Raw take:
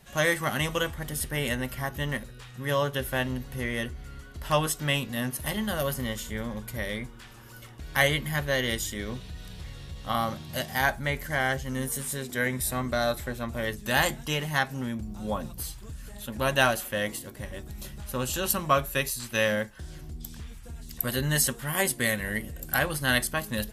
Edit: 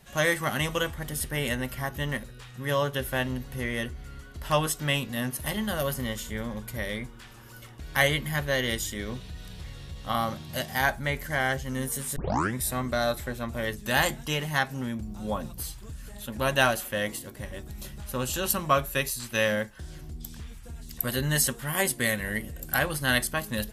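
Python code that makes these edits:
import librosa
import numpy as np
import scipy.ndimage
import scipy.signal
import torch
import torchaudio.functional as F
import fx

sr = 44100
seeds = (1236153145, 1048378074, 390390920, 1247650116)

y = fx.edit(x, sr, fx.tape_start(start_s=12.16, length_s=0.39), tone=tone)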